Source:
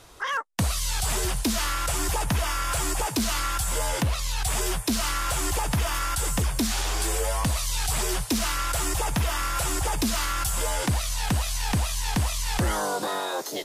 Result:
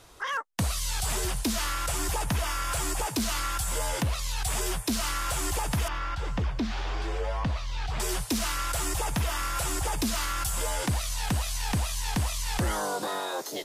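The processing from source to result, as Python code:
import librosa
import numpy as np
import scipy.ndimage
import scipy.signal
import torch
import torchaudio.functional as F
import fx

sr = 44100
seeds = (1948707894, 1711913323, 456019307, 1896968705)

y = fx.air_absorb(x, sr, metres=230.0, at=(5.88, 8.0))
y = y * 10.0 ** (-3.0 / 20.0)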